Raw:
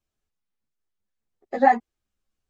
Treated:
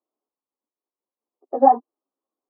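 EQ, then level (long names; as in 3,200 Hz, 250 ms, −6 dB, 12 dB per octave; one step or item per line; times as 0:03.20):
elliptic band-pass filter 270–1,100 Hz, stop band 40 dB
+4.0 dB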